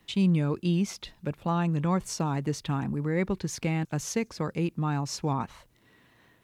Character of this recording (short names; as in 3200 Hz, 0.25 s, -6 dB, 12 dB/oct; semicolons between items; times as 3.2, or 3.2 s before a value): noise floor -64 dBFS; spectral tilt -6.5 dB/oct